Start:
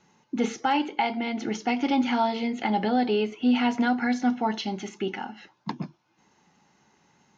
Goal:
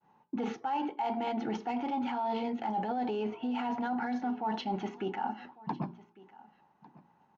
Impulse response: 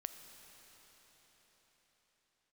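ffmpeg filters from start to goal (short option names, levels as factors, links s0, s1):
-filter_complex "[0:a]agate=range=0.0224:threshold=0.00158:ratio=3:detection=peak,adynamicsmooth=sensitivity=4.5:basefreq=3300,highshelf=f=5100:g=-10.5,bandreject=f=58.19:t=h:w=4,bandreject=f=116.38:t=h:w=4,bandreject=f=174.57:t=h:w=4,bandreject=f=232.76:t=h:w=4,bandreject=f=290.95:t=h:w=4,bandreject=f=349.14:t=h:w=4,bandreject=f=407.33:t=h:w=4,alimiter=limit=0.0668:level=0:latency=1:release=20,equalizer=f=870:w=1.7:g=9.5,bandreject=f=2100:w=16,areverse,acompressor=threshold=0.0316:ratio=6,areverse,aresample=16000,aresample=44100,asplit=2[s0][s1];[s1]aecho=0:1:1151:0.0891[s2];[s0][s2]amix=inputs=2:normalize=0"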